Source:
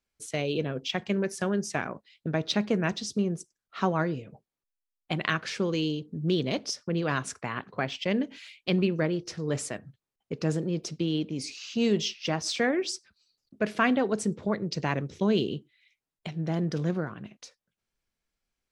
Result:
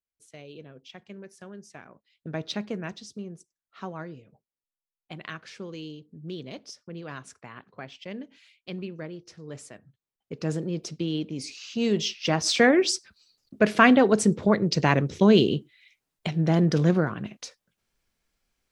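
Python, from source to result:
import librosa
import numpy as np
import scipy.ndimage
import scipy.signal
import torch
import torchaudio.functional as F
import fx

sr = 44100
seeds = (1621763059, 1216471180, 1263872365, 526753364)

y = fx.gain(x, sr, db=fx.line((1.87, -15.5), (2.39, -3.5), (3.2, -10.5), (9.73, -10.5), (10.52, -0.5), (11.8, -0.5), (12.61, 7.5)))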